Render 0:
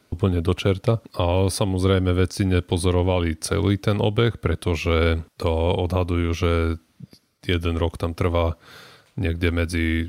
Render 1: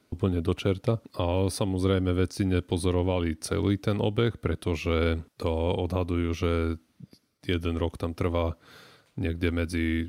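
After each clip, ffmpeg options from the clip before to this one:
ffmpeg -i in.wav -af "equalizer=frequency=280:width=1.2:gain=4,volume=-7dB" out.wav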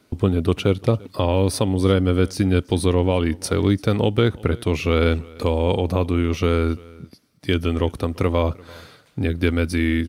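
ffmpeg -i in.wav -af "aecho=1:1:342:0.0668,volume=7dB" out.wav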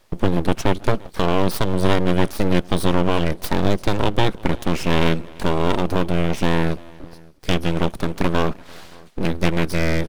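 ffmpeg -i in.wav -filter_complex "[0:a]asplit=2[link_01][link_02];[link_02]adelay=571.4,volume=-25dB,highshelf=frequency=4000:gain=-12.9[link_03];[link_01][link_03]amix=inputs=2:normalize=0,aeval=exprs='abs(val(0))':channel_layout=same,volume=2.5dB" out.wav

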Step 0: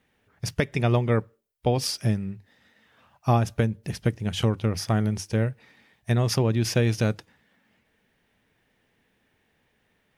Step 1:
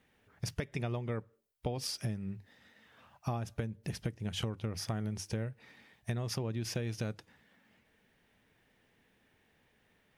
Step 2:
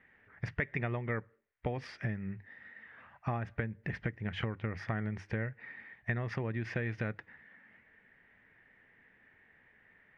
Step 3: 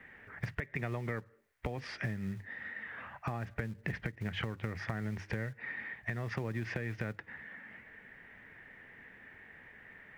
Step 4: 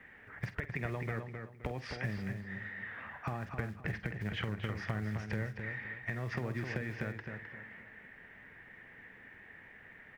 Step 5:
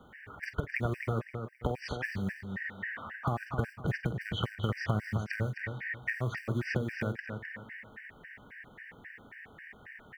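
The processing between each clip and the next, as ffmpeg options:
ffmpeg -i in.wav -af "acompressor=threshold=-32dB:ratio=6,volume=-1.5dB" out.wav
ffmpeg -i in.wav -af "lowpass=frequency=1900:width_type=q:width=4.6" out.wav
ffmpeg -i in.wav -filter_complex "[0:a]acrossover=split=190|1000[link_01][link_02][link_03];[link_01]acrusher=bits=5:mode=log:mix=0:aa=0.000001[link_04];[link_04][link_02][link_03]amix=inputs=3:normalize=0,alimiter=limit=-24dB:level=0:latency=1:release=395,acompressor=threshold=-47dB:ratio=2.5,volume=9.5dB" out.wav
ffmpeg -i in.wav -filter_complex "[0:a]asplit=2[link_01][link_02];[link_02]adelay=48,volume=-13.5dB[link_03];[link_01][link_03]amix=inputs=2:normalize=0,asplit=2[link_04][link_05];[link_05]adelay=261,lowpass=frequency=3500:poles=1,volume=-6dB,asplit=2[link_06][link_07];[link_07]adelay=261,lowpass=frequency=3500:poles=1,volume=0.32,asplit=2[link_08][link_09];[link_09]adelay=261,lowpass=frequency=3500:poles=1,volume=0.32,asplit=2[link_10][link_11];[link_11]adelay=261,lowpass=frequency=3500:poles=1,volume=0.32[link_12];[link_06][link_08][link_10][link_12]amix=inputs=4:normalize=0[link_13];[link_04][link_13]amix=inputs=2:normalize=0,volume=-1dB" out.wav
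ffmpeg -i in.wav -af "afftfilt=real='re*gt(sin(2*PI*3.7*pts/sr)*(1-2*mod(floor(b*sr/1024/1500),2)),0)':imag='im*gt(sin(2*PI*3.7*pts/sr)*(1-2*mod(floor(b*sr/1024/1500),2)),0)':win_size=1024:overlap=0.75,volume=7dB" out.wav

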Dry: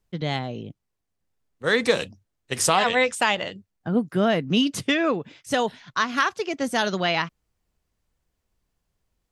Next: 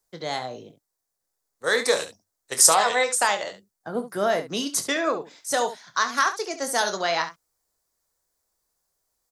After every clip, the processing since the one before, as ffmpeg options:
ffmpeg -i in.wav -filter_complex "[0:a]acrossover=split=400 2300:gain=0.158 1 0.141[link_01][link_02][link_03];[link_01][link_02][link_03]amix=inputs=3:normalize=0,aecho=1:1:25|70:0.299|0.251,aexciter=amount=13.1:drive=5.3:freq=4200,volume=1dB" out.wav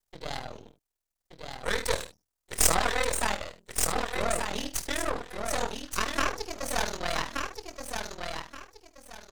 ffmpeg -i in.wav -af "aeval=exprs='val(0)*sin(2*PI*20*n/s)':channel_layout=same,aecho=1:1:1176|2352|3528:0.562|0.146|0.038,aeval=exprs='max(val(0),0)':channel_layout=same" out.wav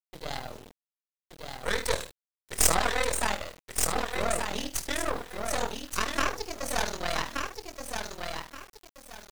ffmpeg -i in.wav -af "acrusher=bits=7:mix=0:aa=0.000001" out.wav

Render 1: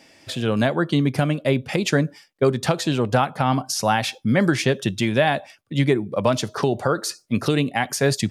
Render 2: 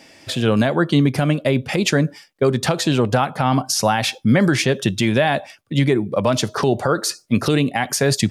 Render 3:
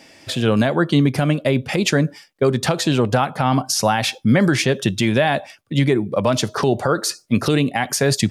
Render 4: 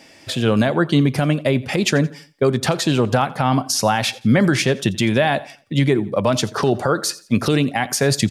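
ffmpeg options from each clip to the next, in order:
ffmpeg -i in.wav -af "alimiter=limit=-11dB:level=0:latency=1:release=60,volume=5dB" out.wav
ffmpeg -i in.wav -af anull out.wav
ffmpeg -i in.wav -af "aecho=1:1:86|172|258:0.0944|0.034|0.0122" out.wav

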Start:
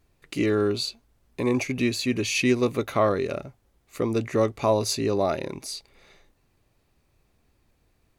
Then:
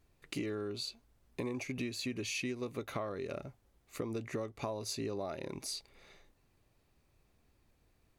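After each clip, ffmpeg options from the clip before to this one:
ffmpeg -i in.wav -af "acompressor=threshold=-30dB:ratio=16,volume=-4.5dB" out.wav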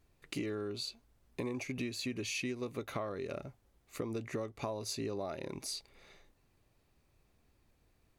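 ffmpeg -i in.wav -af anull out.wav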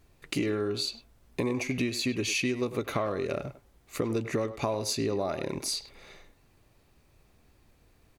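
ffmpeg -i in.wav -filter_complex "[0:a]asplit=2[link_01][link_02];[link_02]adelay=100,highpass=300,lowpass=3400,asoftclip=type=hard:threshold=-31.5dB,volume=-11dB[link_03];[link_01][link_03]amix=inputs=2:normalize=0,volume=8.5dB" out.wav

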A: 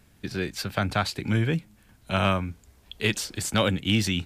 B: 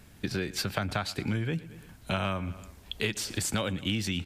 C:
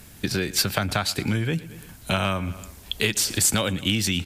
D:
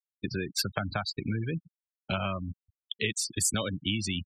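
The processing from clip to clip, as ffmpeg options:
ffmpeg -i in.wav -af "aecho=1:1:113|226|339:0.075|0.0375|0.0187,acompressor=threshold=-32dB:ratio=6,volume=4.5dB" out.wav
ffmpeg -i in.wav -af "aemphasis=mode=production:type=cd,volume=6dB" out.wav
ffmpeg -i in.wav -af "aeval=exprs='sgn(val(0))*max(abs(val(0))-0.00596,0)':channel_layout=same,afftfilt=real='re*gte(hypot(re,im),0.0794)':imag='im*gte(hypot(re,im),0.0794)':win_size=1024:overlap=0.75,volume=-6dB" out.wav

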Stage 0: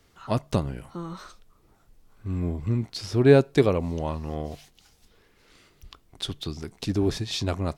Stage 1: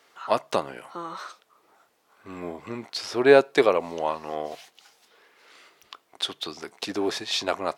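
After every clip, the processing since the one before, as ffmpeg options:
ffmpeg -i in.wav -af "highpass=610,highshelf=frequency=3500:gain=-8,volume=8.5dB" out.wav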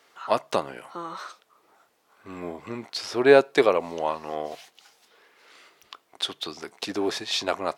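ffmpeg -i in.wav -af anull out.wav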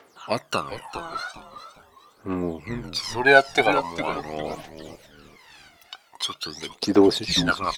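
ffmpeg -i in.wav -filter_complex "[0:a]aphaser=in_gain=1:out_gain=1:delay=1.5:decay=0.79:speed=0.43:type=triangular,asplit=4[link_01][link_02][link_03][link_04];[link_02]adelay=406,afreqshift=-130,volume=-10.5dB[link_05];[link_03]adelay=812,afreqshift=-260,volume=-20.7dB[link_06];[link_04]adelay=1218,afreqshift=-390,volume=-30.8dB[link_07];[link_01][link_05][link_06][link_07]amix=inputs=4:normalize=0" out.wav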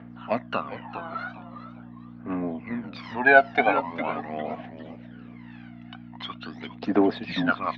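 ffmpeg -i in.wav -af "aeval=exprs='val(0)+0.0178*(sin(2*PI*60*n/s)+sin(2*PI*2*60*n/s)/2+sin(2*PI*3*60*n/s)/3+sin(2*PI*4*60*n/s)/4+sin(2*PI*5*60*n/s)/5)':channel_layout=same,highpass=frequency=110:width=0.5412,highpass=frequency=110:width=1.3066,equalizer=frequency=140:width_type=q:width=4:gain=-8,equalizer=frequency=240:width_type=q:width=4:gain=8,equalizer=frequency=360:width_type=q:width=4:gain=-7,equalizer=frequency=700:width_type=q:width=4:gain=5,equalizer=frequency=1700:width_type=q:width=4:gain=4,lowpass=frequency=2900:width=0.5412,lowpass=frequency=2900:width=1.3066,volume=-3dB" out.wav

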